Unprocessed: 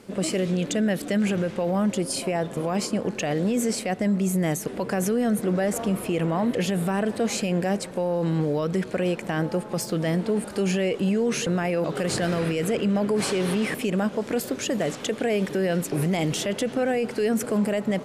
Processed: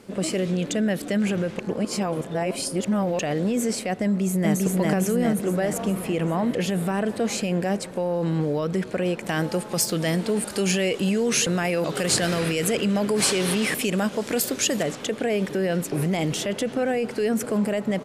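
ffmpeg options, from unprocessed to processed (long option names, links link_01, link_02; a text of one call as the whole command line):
ffmpeg -i in.wav -filter_complex "[0:a]asplit=2[link_01][link_02];[link_02]afade=type=in:start_time=4.04:duration=0.01,afade=type=out:start_time=4.53:duration=0.01,aecho=0:1:400|800|1200|1600|2000|2400|2800|3200|3600:0.944061|0.566437|0.339862|0.203917|0.12235|0.0734102|0.0440461|0.0264277|0.0158566[link_03];[link_01][link_03]amix=inputs=2:normalize=0,asettb=1/sr,asplit=3[link_04][link_05][link_06];[link_04]atrim=end=9.264[link_07];[link_05]atrim=start=9.26:end=14.83,asetpts=PTS-STARTPTS,afade=type=in:duration=0.004:curve=qsin,afade=type=out:start_time=5.566:duration=0.004:curve=qsin,highshelf=frequency=2400:gain=10[link_08];[link_06]atrim=start=14.826[link_09];[link_07][link_08]acrossfade=duration=0.004:curve1=hsin:curve2=qsin[link_10];[link_10][link_09]acrossfade=duration=0.004:curve1=qsin:curve2=hsin,asplit=3[link_11][link_12][link_13];[link_11]atrim=end=1.592[link_14];[link_12]atrim=start=1.588:end=3.192,asetpts=PTS-STARTPTS,areverse[link_15];[link_13]atrim=start=3.188[link_16];[link_14][link_15]acrossfade=duration=0.004:curve1=hsin:curve2=hsin[link_17];[link_17][link_16]acrossfade=duration=0.004:curve1=hsin:curve2=hsin" out.wav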